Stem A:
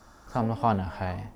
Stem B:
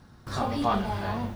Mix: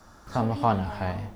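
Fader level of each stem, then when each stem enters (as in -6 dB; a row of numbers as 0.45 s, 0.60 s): +1.0 dB, -9.0 dB; 0.00 s, 0.00 s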